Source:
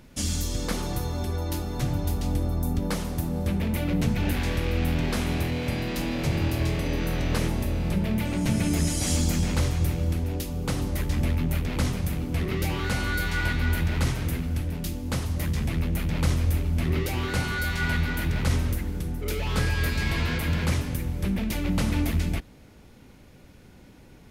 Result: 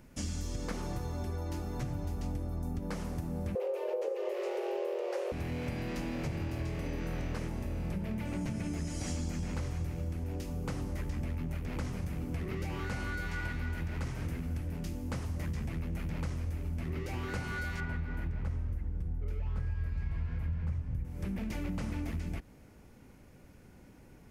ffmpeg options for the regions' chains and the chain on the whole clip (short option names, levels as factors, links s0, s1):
-filter_complex "[0:a]asettb=1/sr,asplit=3[s0][s1][s2];[s0]atrim=end=3.554[s3];[s1]atrim=start=3.55:end=5.32,asetpts=PTS-STARTPTS,afade=t=in:d=0.004:c=qsin,afade=t=out:st=1.766:d=0.004:c=qsin,equalizer=f=210:w=2:g=11,afreqshift=320[s4];[s2]atrim=start=5.316[s5];[s3][s4]acrossfade=d=0.004:c1=hsin:c2=qsin[s6];[s6][s5]acrossfade=d=0.004:c1=qsin:c2=hsin,asettb=1/sr,asplit=3[s7][s8][s9];[s7]atrim=end=17.804[s10];[s8]atrim=start=17.8:end=21.05,asetpts=PTS-STARTPTS,afade=t=in:d=0.004:c=qsin,afade=t=out:st=3.246:d=0.004:c=qsin,asubboost=boost=7:cutoff=130,lowpass=f=1400:p=1[s11];[s9]atrim=start=21.046[s12];[s10][s11]acrossfade=d=0.004:c1=hsin:c2=qsin[s13];[s13][s12]acrossfade=d=0.004:c1=qsin:c2=hsin,acrossover=split=7300[s14][s15];[s15]acompressor=threshold=0.00224:ratio=4:attack=1:release=60[s16];[s14][s16]amix=inputs=2:normalize=0,equalizer=f=3700:t=o:w=0.74:g=-8,acompressor=threshold=0.0447:ratio=6,volume=0.562"